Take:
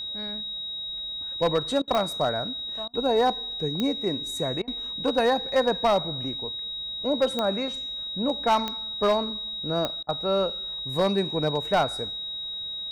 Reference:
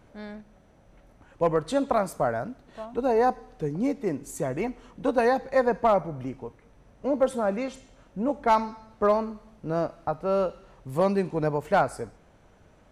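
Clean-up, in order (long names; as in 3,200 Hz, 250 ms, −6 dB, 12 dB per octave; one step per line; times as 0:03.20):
clipped peaks rebuilt −15.5 dBFS
click removal
notch filter 3,800 Hz, Q 30
repair the gap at 0:01.82/0:02.88/0:04.62/0:10.03, 55 ms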